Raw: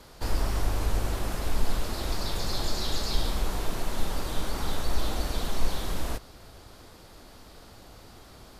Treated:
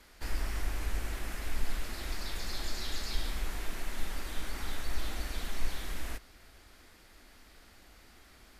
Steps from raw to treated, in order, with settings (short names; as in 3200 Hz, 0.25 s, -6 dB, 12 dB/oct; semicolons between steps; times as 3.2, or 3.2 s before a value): graphic EQ 125/500/1000/2000/4000 Hz -12/-6/-5/+7/-3 dB; gain -5.5 dB